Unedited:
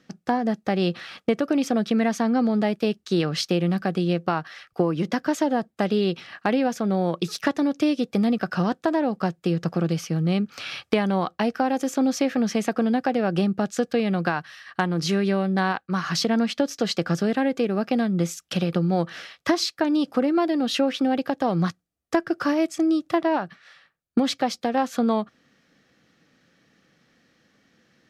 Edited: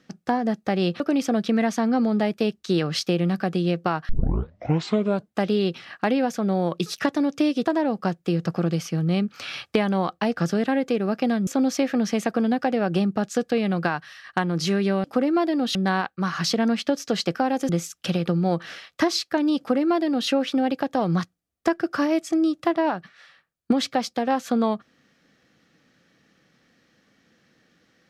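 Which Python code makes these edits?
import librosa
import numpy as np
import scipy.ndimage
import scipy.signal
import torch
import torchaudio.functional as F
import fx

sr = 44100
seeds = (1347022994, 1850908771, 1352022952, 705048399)

y = fx.edit(x, sr, fx.cut(start_s=1.0, length_s=0.42),
    fx.tape_start(start_s=4.51, length_s=1.25),
    fx.cut(start_s=8.07, length_s=0.76),
    fx.swap(start_s=11.55, length_s=0.34, other_s=17.06, other_length_s=1.1),
    fx.duplicate(start_s=20.05, length_s=0.71, to_s=15.46), tone=tone)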